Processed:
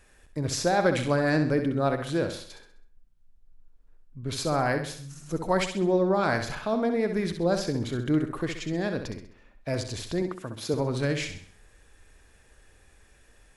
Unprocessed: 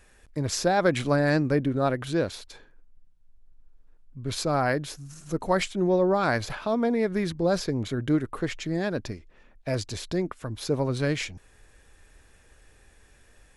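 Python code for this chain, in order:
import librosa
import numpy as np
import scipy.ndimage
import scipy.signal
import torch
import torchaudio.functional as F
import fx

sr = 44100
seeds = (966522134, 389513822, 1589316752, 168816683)

p1 = fx.highpass(x, sr, hz=130.0, slope=12, at=(10.22, 10.74))
p2 = p1 + fx.echo_feedback(p1, sr, ms=65, feedback_pct=43, wet_db=-8.0, dry=0)
y = F.gain(torch.from_numpy(p2), -1.5).numpy()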